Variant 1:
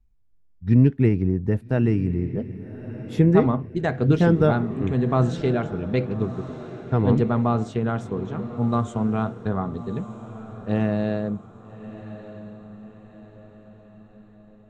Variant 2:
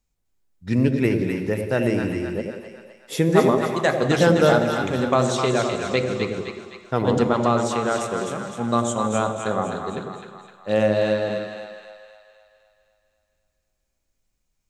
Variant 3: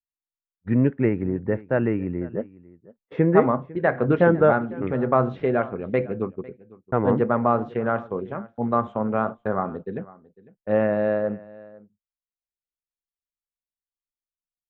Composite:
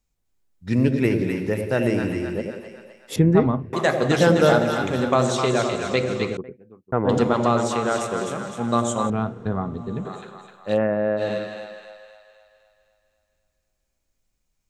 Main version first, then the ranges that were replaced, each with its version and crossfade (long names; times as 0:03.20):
2
0:03.16–0:03.73: punch in from 1
0:06.37–0:07.09: punch in from 3
0:09.10–0:10.05: punch in from 1
0:10.76–0:11.19: punch in from 3, crossfade 0.06 s